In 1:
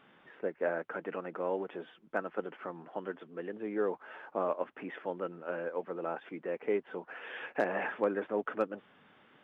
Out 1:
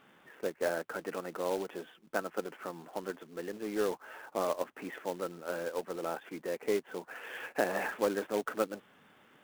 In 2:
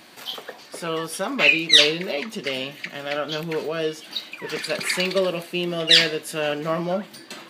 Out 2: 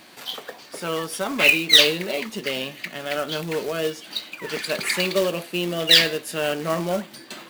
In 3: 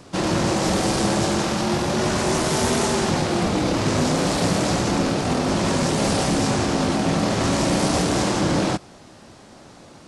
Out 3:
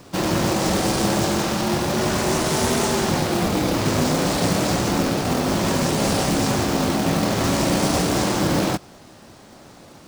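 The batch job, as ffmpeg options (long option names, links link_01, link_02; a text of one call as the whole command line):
ffmpeg -i in.wav -af "acrusher=bits=3:mode=log:mix=0:aa=0.000001" out.wav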